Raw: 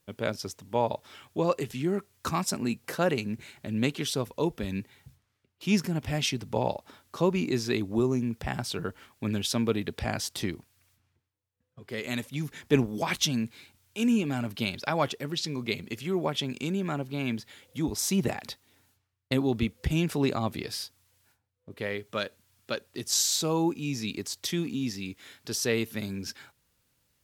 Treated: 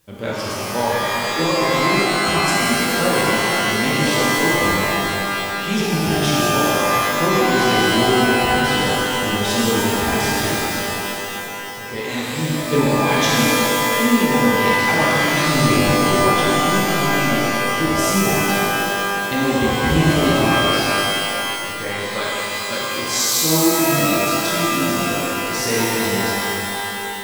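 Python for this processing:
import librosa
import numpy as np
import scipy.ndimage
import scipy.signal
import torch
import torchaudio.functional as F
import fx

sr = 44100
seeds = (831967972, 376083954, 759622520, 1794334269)

y = fx.law_mismatch(x, sr, coded='mu')
y = fx.riaa(y, sr, side='playback', at=(15.38, 15.89))
y = fx.rev_shimmer(y, sr, seeds[0], rt60_s=3.1, semitones=12, shimmer_db=-2, drr_db=-7.0)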